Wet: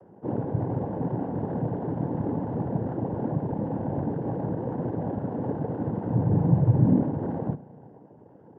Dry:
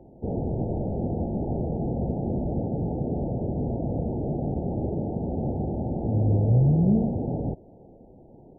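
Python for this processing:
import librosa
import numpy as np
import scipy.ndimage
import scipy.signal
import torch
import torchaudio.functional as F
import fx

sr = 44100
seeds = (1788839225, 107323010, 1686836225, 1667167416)

y = fx.noise_vocoder(x, sr, seeds[0], bands=8)
y = fx.rev_spring(y, sr, rt60_s=1.8, pass_ms=(34,), chirp_ms=70, drr_db=17.5)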